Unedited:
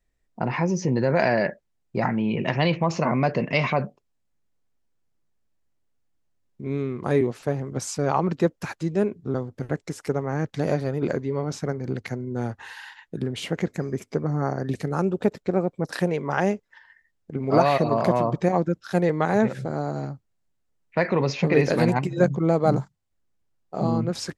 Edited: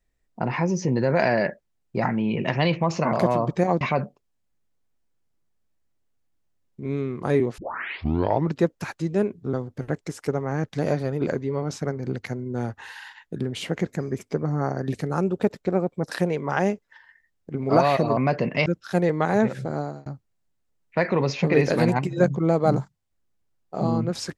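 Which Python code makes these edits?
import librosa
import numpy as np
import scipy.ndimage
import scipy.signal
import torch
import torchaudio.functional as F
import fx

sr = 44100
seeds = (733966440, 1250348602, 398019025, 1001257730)

y = fx.edit(x, sr, fx.swap(start_s=3.13, length_s=0.49, other_s=17.98, other_length_s=0.68),
    fx.tape_start(start_s=7.39, length_s=0.96),
    fx.fade_out_span(start_s=19.79, length_s=0.27), tone=tone)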